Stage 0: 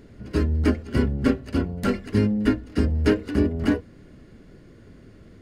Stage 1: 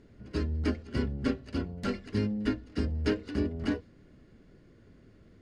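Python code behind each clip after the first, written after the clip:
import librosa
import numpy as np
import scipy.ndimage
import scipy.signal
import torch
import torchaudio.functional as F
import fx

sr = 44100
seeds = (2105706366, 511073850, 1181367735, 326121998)

y = scipy.signal.sosfilt(scipy.signal.butter(2, 7900.0, 'lowpass', fs=sr, output='sos'), x)
y = fx.dynamic_eq(y, sr, hz=4500.0, q=0.99, threshold_db=-50.0, ratio=4.0, max_db=6)
y = y * 10.0 ** (-9.0 / 20.0)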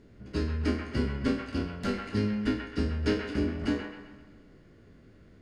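y = fx.spec_trails(x, sr, decay_s=0.41)
y = fx.echo_wet_bandpass(y, sr, ms=131, feedback_pct=43, hz=1400.0, wet_db=-3.5)
y = fx.rev_schroeder(y, sr, rt60_s=2.1, comb_ms=30, drr_db=16.5)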